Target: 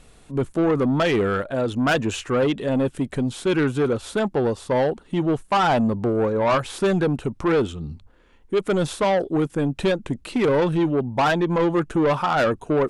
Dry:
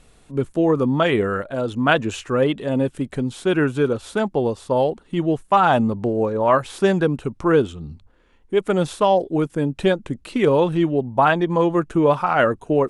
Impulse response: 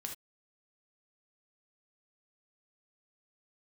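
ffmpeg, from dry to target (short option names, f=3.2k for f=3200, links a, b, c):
-af "asoftclip=type=tanh:threshold=-17dB,volume=2dB"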